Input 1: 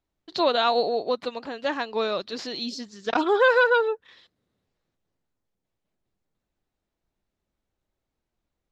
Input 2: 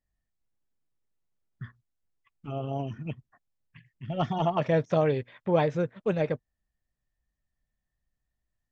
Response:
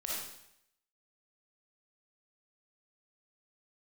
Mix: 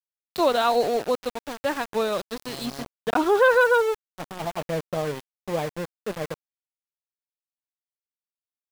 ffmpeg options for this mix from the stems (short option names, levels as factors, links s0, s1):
-filter_complex "[0:a]lowshelf=f=79:g=11.5,volume=1.19,asplit=2[s0][s1];[1:a]highpass=f=140:p=1,volume=0.75[s2];[s1]apad=whole_len=384520[s3];[s2][s3]sidechaincompress=threshold=0.0501:ratio=10:attack=16:release=635[s4];[s0][s4]amix=inputs=2:normalize=0,highshelf=f=3600:g=-10.5,aeval=exprs='val(0)*gte(abs(val(0)),0.0316)':c=same"